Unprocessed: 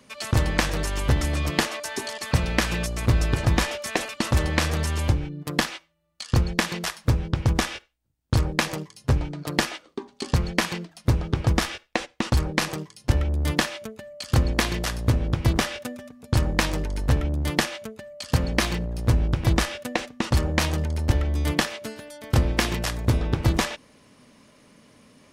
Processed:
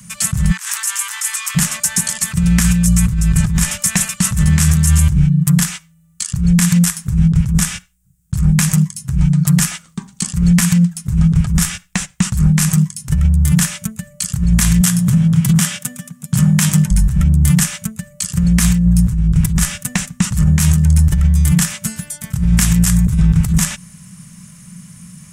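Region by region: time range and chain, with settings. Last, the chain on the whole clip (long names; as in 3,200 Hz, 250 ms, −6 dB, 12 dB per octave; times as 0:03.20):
0:00.51–0:01.55: Butterworth high-pass 860 Hz 72 dB per octave + compressor whose output falls as the input rises −36 dBFS
0:14.81–0:16.91: high-pass filter 130 Hz 24 dB per octave + parametric band 3,200 Hz +5 dB 0.22 octaves
whole clip: drawn EQ curve 110 Hz 0 dB, 180 Hz +11 dB, 260 Hz −20 dB, 410 Hz −29 dB, 1,400 Hz −9 dB, 4,400 Hz −11 dB, 7,600 Hz +8 dB, 14,000 Hz +4 dB; compressor whose output falls as the input rises −25 dBFS, ratio −1; boost into a limiter +15 dB; level −1.5 dB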